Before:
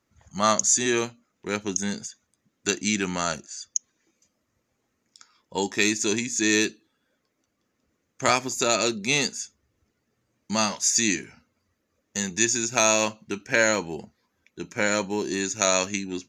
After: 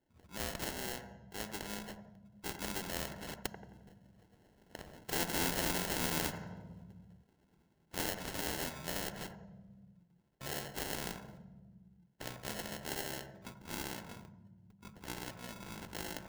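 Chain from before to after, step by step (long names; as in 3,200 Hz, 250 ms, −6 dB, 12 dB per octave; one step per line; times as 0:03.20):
pitch glide at a constant tempo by −9 semitones starting unshifted
source passing by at 0:05.34, 28 m/s, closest 13 metres
dynamic equaliser 970 Hz, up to +5 dB, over −48 dBFS, Q 1
in parallel at +1 dB: downward compressor, threshold −40 dBFS, peak gain reduction 20 dB
on the sum: sample-rate reduction 1,200 Hz, jitter 0%
tube saturation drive 22 dB, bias 0.45
delay with a band-pass on its return 88 ms, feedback 37%, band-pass 920 Hz, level −14 dB
on a send at −17.5 dB: convolution reverb RT60 1.2 s, pre-delay 3 ms
on the sum: every bin compressed towards the loudest bin 2 to 1
level +1.5 dB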